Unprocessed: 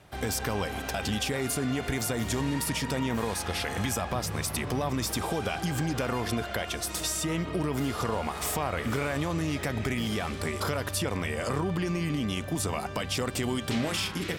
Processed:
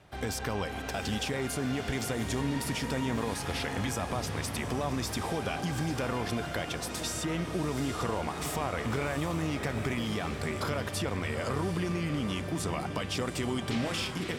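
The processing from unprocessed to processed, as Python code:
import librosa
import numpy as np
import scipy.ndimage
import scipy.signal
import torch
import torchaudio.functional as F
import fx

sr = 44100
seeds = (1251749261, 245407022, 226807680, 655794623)

y = fx.high_shelf(x, sr, hz=10000.0, db=-9.5)
y = fx.echo_diffused(y, sr, ms=767, feedback_pct=59, wet_db=-10.0)
y = F.gain(torch.from_numpy(y), -2.5).numpy()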